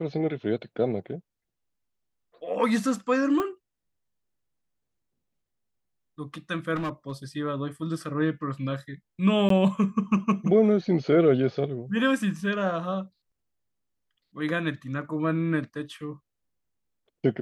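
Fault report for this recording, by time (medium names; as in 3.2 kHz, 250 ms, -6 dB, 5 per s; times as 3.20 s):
3.40 s: pop -15 dBFS
6.75–7.12 s: clipped -26.5 dBFS
9.49–9.50 s: dropout 13 ms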